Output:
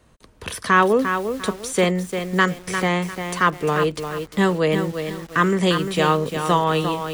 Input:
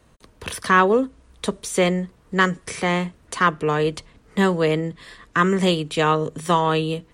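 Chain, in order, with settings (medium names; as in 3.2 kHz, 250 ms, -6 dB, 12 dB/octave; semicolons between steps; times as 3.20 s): bit-crushed delay 349 ms, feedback 35%, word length 6-bit, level -7 dB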